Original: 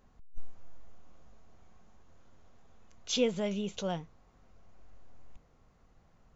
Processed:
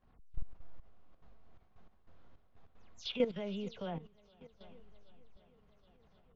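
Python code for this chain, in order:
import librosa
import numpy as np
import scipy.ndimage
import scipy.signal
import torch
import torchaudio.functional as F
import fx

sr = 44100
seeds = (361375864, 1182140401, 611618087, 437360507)

y = fx.spec_delay(x, sr, highs='early', ms=132)
y = scipy.signal.sosfilt(scipy.signal.butter(4, 4400.0, 'lowpass', fs=sr, output='sos'), y)
y = fx.echo_swing(y, sr, ms=769, ratio=1.5, feedback_pct=53, wet_db=-22)
y = fx.level_steps(y, sr, step_db=13)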